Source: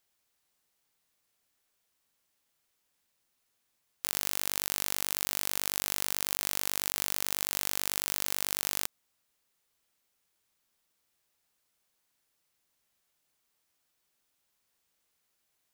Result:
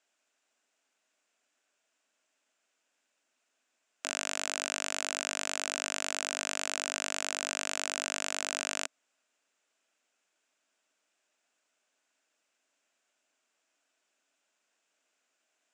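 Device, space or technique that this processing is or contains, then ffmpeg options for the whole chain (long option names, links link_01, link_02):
television speaker: -af "highpass=frequency=230:width=0.5412,highpass=frequency=230:width=1.3066,equalizer=frequency=270:width_type=q:width=4:gain=5,equalizer=frequency=640:width_type=q:width=4:gain=9,equalizer=frequency=1500:width_type=q:width=4:gain=7,equalizer=frequency=2600:width_type=q:width=4:gain=6,equalizer=frequency=4300:width_type=q:width=4:gain=-4,equalizer=frequency=7300:width_type=q:width=4:gain=6,lowpass=frequency=7600:width=0.5412,lowpass=frequency=7600:width=1.3066"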